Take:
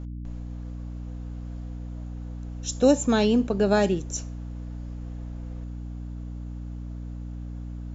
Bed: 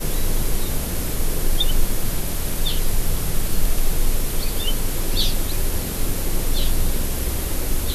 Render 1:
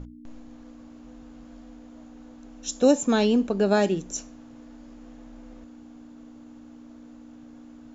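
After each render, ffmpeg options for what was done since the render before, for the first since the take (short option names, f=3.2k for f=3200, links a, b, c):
-af "bandreject=f=60:t=h:w=6,bandreject=f=120:t=h:w=6,bandreject=f=180:t=h:w=6"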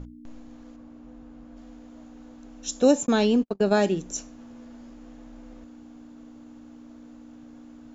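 -filter_complex "[0:a]asettb=1/sr,asplit=3[a][b][c];[a]atrim=end=0.764[d];[b]atrim=start=0.76:end=1.57,asetpts=PTS-STARTPTS,afade=t=in:d=0.004:c=qsin,afade=t=out:st=0.806:d=0.004:c=qsin,highshelf=f=2.7k:g=-10[e];[c]atrim=start=1.566[f];[d][e]acrossfade=d=0.004:c1=hsin:c2=qsin[g];[g][f]acrossfade=d=0.004:c1=qsin:c2=hsin,asplit=3[h][i][j];[h]afade=t=out:st=3.05:d=0.02[k];[i]agate=range=-52dB:threshold=-25dB:ratio=16:release=100:detection=peak,afade=t=in:st=3.05:d=0.02,afade=t=out:st=3.71:d=0.02[l];[j]afade=t=in:st=3.71:d=0.02[m];[k][l][m]amix=inputs=3:normalize=0,asettb=1/sr,asplit=3[n][o][p];[n]atrim=end=4.374[q];[o]atrim=start=4.37:end=4.9,asetpts=PTS-STARTPTS,afade=t=in:d=0.004:c=qsin,afade=t=out:st=0.526:d=0.004:c=qsin,asplit=2[r][s];[s]adelay=12,volume=-5.5dB[t];[r][t]amix=inputs=2:normalize=0,atrim=end_sample=23373[u];[p]atrim=start=4.896[v];[q][u]acrossfade=d=0.004:c1=hsin:c2=qsin[w];[w][v]acrossfade=d=0.004:c1=qsin:c2=hsin"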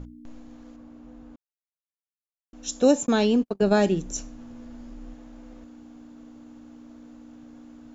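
-filter_complex "[0:a]asettb=1/sr,asplit=3[a][b][c];[a]atrim=end=3.624[d];[b]atrim=start=3.62:end=5.14,asetpts=PTS-STARTPTS,afade=t=in:d=0.004:c=qsin,afade=t=out:st=1.516:d=0.004:c=qsin,lowshelf=f=110:g=11.5[e];[c]atrim=start=5.136[f];[d][e]acrossfade=d=0.004:c1=hsin:c2=qsin[g];[g][f]acrossfade=d=0.004:c1=qsin:c2=hsin,asplit=3[h][i][j];[h]atrim=end=1.36,asetpts=PTS-STARTPTS,afade=t=out:st=1.356:d=0.004:c=hsin[k];[i]atrim=start=1.36:end=2.53,asetpts=PTS-STARTPTS,volume=0[l];[j]atrim=start=2.53,asetpts=PTS-STARTPTS,afade=t=in:d=0.004:c=hsin[m];[k][l][m]concat=n=3:v=0:a=1"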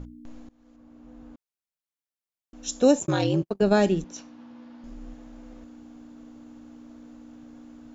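-filter_complex "[0:a]asplit=3[a][b][c];[a]afade=t=out:st=2.99:d=0.02[d];[b]aeval=exprs='val(0)*sin(2*PI*86*n/s)':c=same,afade=t=in:st=2.99:d=0.02,afade=t=out:st=3.48:d=0.02[e];[c]afade=t=in:st=3.48:d=0.02[f];[d][e][f]amix=inputs=3:normalize=0,asettb=1/sr,asplit=3[g][h][i];[g]atrim=end=4.044[j];[h]atrim=start=4.04:end=4.84,asetpts=PTS-STARTPTS,afade=t=in:d=0.004:c=qsin,afade=t=out:st=0.796:d=0.004:c=qsin,highpass=230,equalizer=f=420:t=q:w=4:g=-7,equalizer=f=640:t=q:w=4:g=-4,equalizer=f=950:t=q:w=4:g=4,lowpass=f=4.9k:w=0.5412,lowpass=f=4.9k:w=1.3066[k];[i]atrim=start=4.836[l];[j][k]acrossfade=d=0.004:c1=hsin:c2=qsin[m];[m][l]acrossfade=d=0.004:c1=qsin:c2=hsin,asplit=2[n][o];[n]atrim=end=0.49,asetpts=PTS-STARTPTS,afade=t=out:st=0.486:d=0.004:c=hsin:silence=0.0891251[p];[o]atrim=start=0.49,asetpts=PTS-STARTPTS,afade=t=in:d=0.76:silence=0.0891251[q];[p][q]concat=n=2:v=0:a=1"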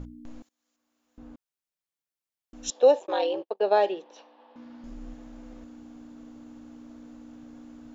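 -filter_complex "[0:a]asettb=1/sr,asplit=3[a][b][c];[a]atrim=end=0.424[d];[b]atrim=start=0.42:end=1.18,asetpts=PTS-STARTPTS,afade=t=in:d=0.004:c=qsin,afade=t=out:st=0.756:d=0.004:c=qsin,aderivative[e];[c]atrim=start=1.176[f];[d][e]acrossfade=d=0.004:c1=hsin:c2=qsin[g];[g][f]acrossfade=d=0.004:c1=qsin:c2=hsin,asettb=1/sr,asplit=3[h][i][j];[h]atrim=end=2.704[k];[i]atrim=start=2.7:end=4.56,asetpts=PTS-STARTPTS,afade=t=in:d=0.004:c=qsin,afade=t=out:st=1.856:d=0.004:c=qsin,highpass=f=450:w=0.5412,highpass=f=450:w=1.3066,equalizer=f=500:t=q:w=4:g=5,equalizer=f=850:t=q:w=4:g=5,equalizer=f=1.4k:t=q:w=4:g=-8,equalizer=f=2.2k:t=q:w=4:g=-6,lowpass=f=3.8k:w=0.5412,lowpass=f=3.8k:w=1.3066[l];[j]atrim=start=4.556[m];[k][l]acrossfade=d=0.004:c1=hsin:c2=qsin[n];[n][m]acrossfade=d=0.004:c1=qsin:c2=hsin"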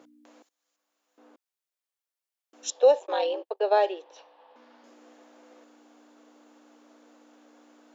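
-af "highpass=f=390:w=0.5412,highpass=f=390:w=1.3066"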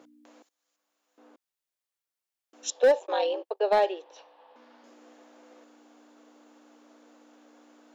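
-af "asoftclip=type=hard:threshold=-15dB"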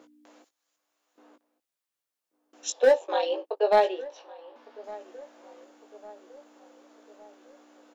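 -filter_complex "[0:a]asplit=2[a][b];[b]adelay=19,volume=-6dB[c];[a][c]amix=inputs=2:normalize=0,asplit=2[d][e];[e]adelay=1157,lowpass=f=1.6k:p=1,volume=-19.5dB,asplit=2[f][g];[g]adelay=1157,lowpass=f=1.6k:p=1,volume=0.54,asplit=2[h][i];[i]adelay=1157,lowpass=f=1.6k:p=1,volume=0.54,asplit=2[j][k];[k]adelay=1157,lowpass=f=1.6k:p=1,volume=0.54[l];[d][f][h][j][l]amix=inputs=5:normalize=0"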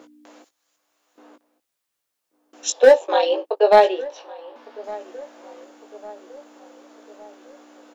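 -af "volume=8dB"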